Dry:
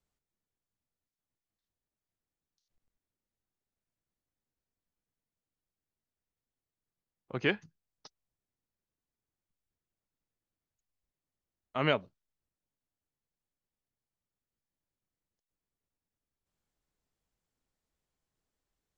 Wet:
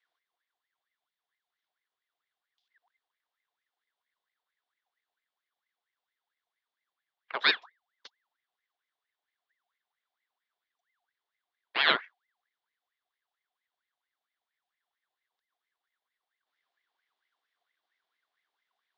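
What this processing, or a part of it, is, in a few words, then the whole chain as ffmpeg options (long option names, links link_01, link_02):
voice changer toy: -af "aeval=exprs='val(0)*sin(2*PI*1400*n/s+1400*0.5/4.4*sin(2*PI*4.4*n/s))':channel_layout=same,highpass=520,equalizer=frequency=570:width_type=q:width=4:gain=-6,equalizer=frequency=870:width_type=q:width=4:gain=-5,equalizer=frequency=1300:width_type=q:width=4:gain=-4,equalizer=frequency=2500:width_type=q:width=4:gain=-5,equalizer=frequency=3500:width_type=q:width=4:gain=6,lowpass=frequency=4300:width=0.5412,lowpass=frequency=4300:width=1.3066,volume=9dB"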